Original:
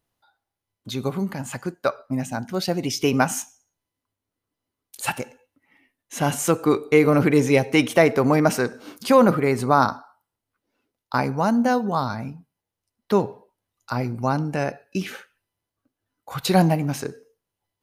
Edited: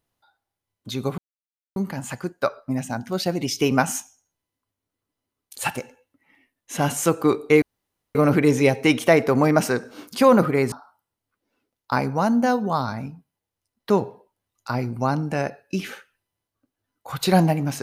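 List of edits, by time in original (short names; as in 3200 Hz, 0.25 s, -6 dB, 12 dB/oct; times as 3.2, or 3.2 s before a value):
1.18 insert silence 0.58 s
7.04 insert room tone 0.53 s
9.61–9.94 cut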